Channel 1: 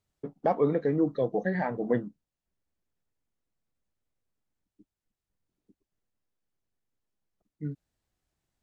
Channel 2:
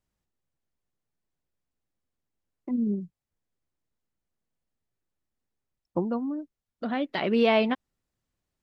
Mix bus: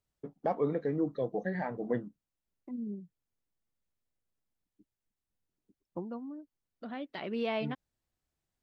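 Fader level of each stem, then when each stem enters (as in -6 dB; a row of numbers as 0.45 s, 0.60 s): -5.5 dB, -11.5 dB; 0.00 s, 0.00 s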